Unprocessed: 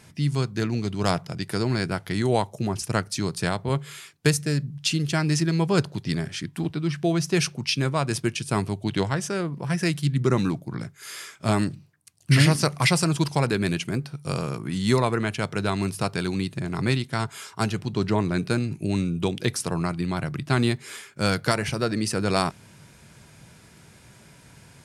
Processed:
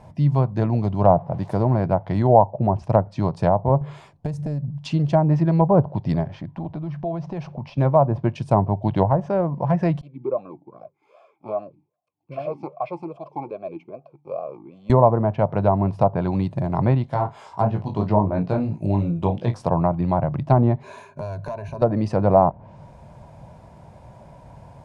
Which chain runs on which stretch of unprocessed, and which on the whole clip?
1.13–1.84 s: zero-crossing glitches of -21 dBFS + treble shelf 2.1 kHz -8.5 dB
3.81–4.69 s: bass shelf 480 Hz +7 dB + compression, threshold -29 dBFS
6.23–7.78 s: median filter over 5 samples + compression 4:1, threshold -31 dBFS + distance through air 99 m
10.01–14.90 s: comb of notches 960 Hz + talking filter a-u 2.5 Hz
17.06–19.62 s: chorus 2.9 Hz, delay 17.5 ms, depth 3.1 ms + doubling 33 ms -11 dB + tape noise reduction on one side only encoder only
20.83–21.82 s: self-modulated delay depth 0.14 ms + rippled EQ curve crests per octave 1.5, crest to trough 14 dB + compression 16:1, threshold -33 dBFS
whole clip: high-order bell 750 Hz +15.5 dB 1.2 oct; low-pass that closes with the level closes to 1 kHz, closed at -13 dBFS; tilt EQ -3.5 dB/octave; trim -4 dB

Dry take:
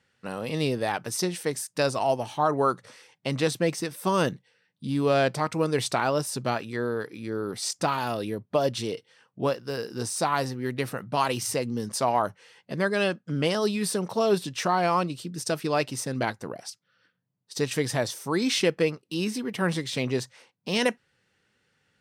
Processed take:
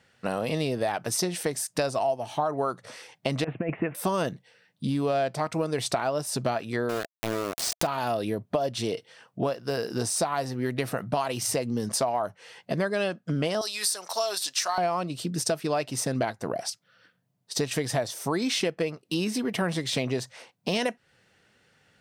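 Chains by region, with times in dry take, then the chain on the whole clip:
3.44–3.95 s: compressor with a negative ratio -27 dBFS, ratio -0.5 + steep low-pass 2.7 kHz 72 dB/octave
6.89–7.87 s: small samples zeroed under -29 dBFS + swell ahead of each attack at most 82 dB/s
13.61–14.78 s: high-pass 1.1 kHz + resonant high shelf 3.8 kHz +6 dB, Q 1.5
whole clip: peaking EQ 670 Hz +8.5 dB 0.3 oct; compression 6:1, threshold -31 dBFS; trim +6.5 dB

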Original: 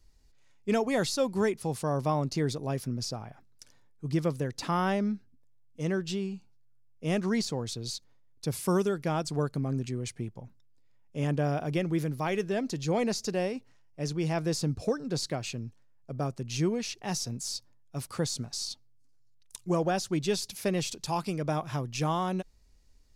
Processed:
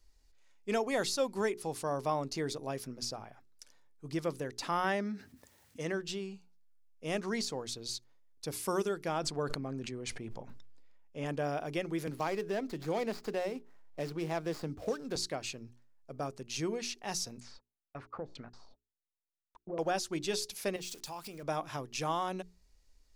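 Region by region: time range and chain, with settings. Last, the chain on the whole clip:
4.84–5.92 s: high-pass 62 Hz + peaking EQ 1.8 kHz +6.5 dB 0.31 oct + level flattener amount 50%
9.18–11.26 s: treble shelf 6.4 kHz -11.5 dB + decay stretcher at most 29 dB/s
12.07–15.16 s: median filter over 15 samples + three bands compressed up and down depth 70%
17.40–19.79 s: gate -45 dBFS, range -34 dB + LFO low-pass saw down 2.1 Hz 450–2600 Hz + compression, threshold -30 dBFS
20.76–21.43 s: zero-crossing glitches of -36.5 dBFS + treble shelf 9 kHz -5 dB + compression 5:1, threshold -36 dBFS
whole clip: peaking EQ 130 Hz -10 dB 1.9 oct; hum notches 60/120/180/240/300/360/420 Hz; trim -2 dB

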